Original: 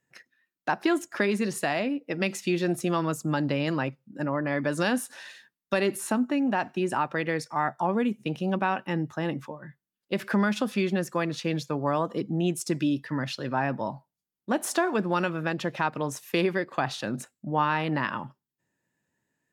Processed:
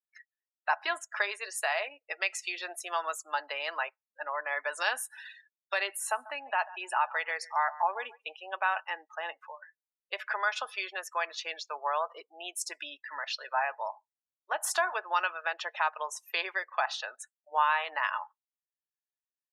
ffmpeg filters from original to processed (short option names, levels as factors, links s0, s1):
-filter_complex "[0:a]asettb=1/sr,asplit=3[s0][s1][s2];[s0]atrim=end=5.874[s3];[s1]atrim=start=5.87:end=8.8,asetpts=PTS-STARTPTS,afade=t=in:d=0.004:c=qsin,afade=t=out:st=2.926:d=0.004:c=qsin,aecho=1:1:142|284:0.126|0.0352,atrim=end_sample=129213[s4];[s2]atrim=start=8.796[s5];[s3][s4]acrossfade=d=0.004:c1=hsin:c2=qsin[s6];[s6][s5]acrossfade=d=0.004:c1=qsin:c2=hsin,highpass=f=720:w=0.5412,highpass=f=720:w=1.3066,afftdn=nr=30:nf=-44,aecho=1:1:4.7:0.3"